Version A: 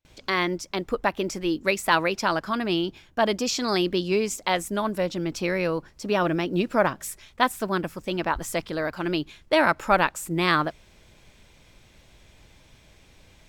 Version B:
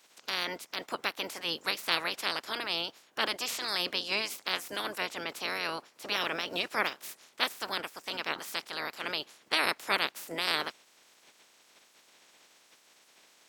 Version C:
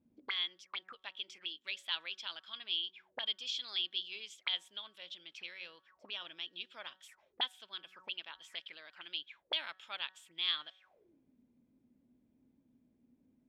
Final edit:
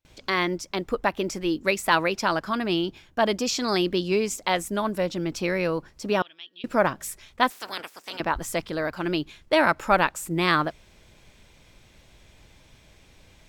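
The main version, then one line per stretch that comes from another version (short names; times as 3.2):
A
6.22–6.64 from C
7.5–8.2 from B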